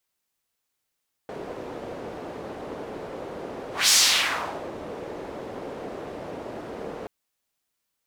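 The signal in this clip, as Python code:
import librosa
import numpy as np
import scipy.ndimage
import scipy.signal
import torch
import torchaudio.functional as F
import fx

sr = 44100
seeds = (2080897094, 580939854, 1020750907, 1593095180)

y = fx.whoosh(sr, seeds[0], length_s=5.78, peak_s=2.61, rise_s=0.19, fall_s=0.81, ends_hz=470.0, peak_hz=5900.0, q=1.5, swell_db=19)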